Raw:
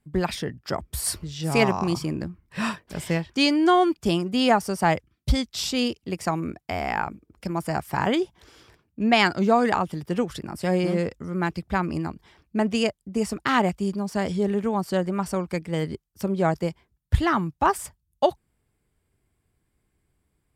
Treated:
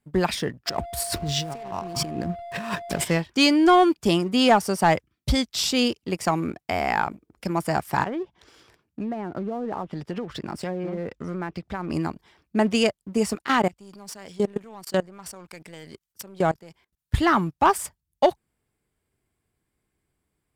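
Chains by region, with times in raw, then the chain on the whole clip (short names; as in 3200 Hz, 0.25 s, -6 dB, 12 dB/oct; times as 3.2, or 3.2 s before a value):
0.66–3.03 negative-ratio compressor -35 dBFS + backlash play -39 dBFS + whine 690 Hz -37 dBFS
8.03–11.9 treble ducked by the level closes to 550 Hz, closed at -16 dBFS + compressor 12:1, threshold -28 dBFS
13.35–17.14 level quantiser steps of 22 dB + mismatched tape noise reduction encoder only
whole clip: low shelf 130 Hz -7.5 dB; sample leveller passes 1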